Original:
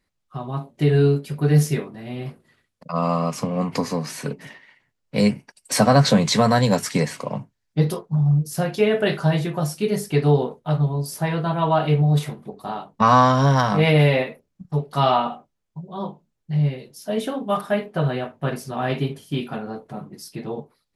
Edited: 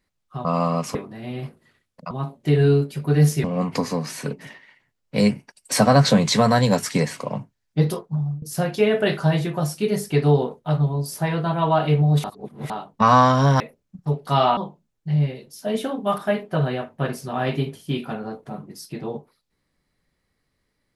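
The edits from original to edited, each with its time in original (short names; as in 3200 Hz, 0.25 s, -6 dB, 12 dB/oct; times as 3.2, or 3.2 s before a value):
0.45–1.78 swap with 2.94–3.44
8.02–8.42 fade out, to -22 dB
12.24–12.7 reverse
13.6–14.26 cut
15.23–16 cut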